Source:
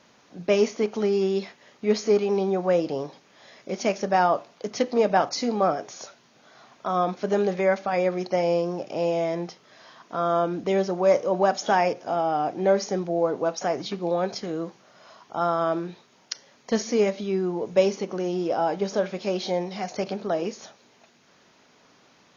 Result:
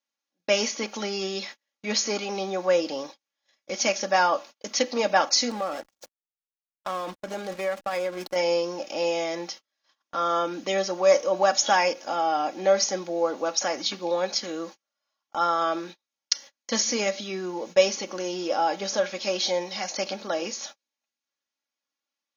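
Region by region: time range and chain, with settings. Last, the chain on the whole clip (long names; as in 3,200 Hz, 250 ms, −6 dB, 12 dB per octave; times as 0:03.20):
0:05.50–0:08.36: slack as between gear wheels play −31 dBFS + high-shelf EQ 2,400 Hz −3 dB + downward compressor 10 to 1, threshold −23 dBFS
whole clip: spectral tilt +3.5 dB per octave; comb filter 3.6 ms, depth 60%; noise gate −40 dBFS, range −36 dB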